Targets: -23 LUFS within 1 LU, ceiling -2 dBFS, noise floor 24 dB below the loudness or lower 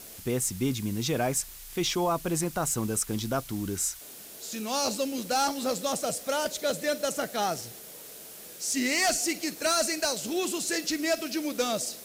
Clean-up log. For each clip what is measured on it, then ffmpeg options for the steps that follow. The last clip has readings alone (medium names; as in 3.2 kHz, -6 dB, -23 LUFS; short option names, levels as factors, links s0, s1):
noise floor -45 dBFS; noise floor target -53 dBFS; loudness -28.5 LUFS; peak level -17.0 dBFS; loudness target -23.0 LUFS
-> -af "afftdn=nr=8:nf=-45"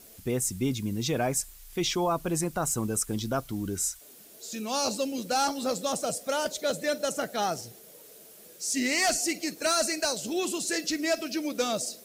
noise floor -51 dBFS; noise floor target -53 dBFS
-> -af "afftdn=nr=6:nf=-51"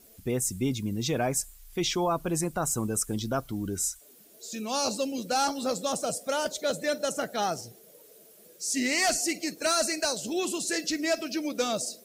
noise floor -55 dBFS; loudness -29.0 LUFS; peak level -17.5 dBFS; loudness target -23.0 LUFS
-> -af "volume=2"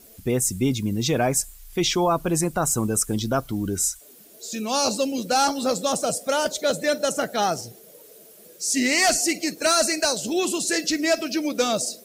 loudness -23.0 LUFS; peak level -11.5 dBFS; noise floor -49 dBFS